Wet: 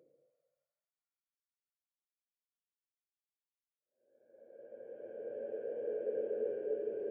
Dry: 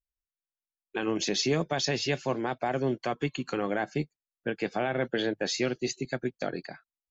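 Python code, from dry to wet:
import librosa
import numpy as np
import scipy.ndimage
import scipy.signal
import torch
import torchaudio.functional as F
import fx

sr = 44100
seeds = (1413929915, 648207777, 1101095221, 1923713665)

y = fx.wah_lfo(x, sr, hz=1.7, low_hz=380.0, high_hz=3300.0, q=16.0)
y = fx.level_steps(y, sr, step_db=16)
y = fx.paulstretch(y, sr, seeds[0], factor=17.0, window_s=0.25, from_s=4.12)
y = y * librosa.db_to_amplitude(12.0)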